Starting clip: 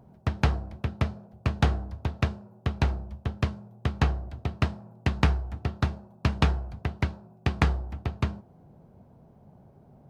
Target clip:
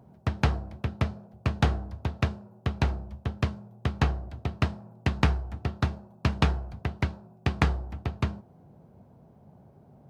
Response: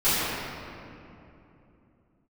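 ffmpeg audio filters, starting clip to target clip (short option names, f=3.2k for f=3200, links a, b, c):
-af "highpass=54"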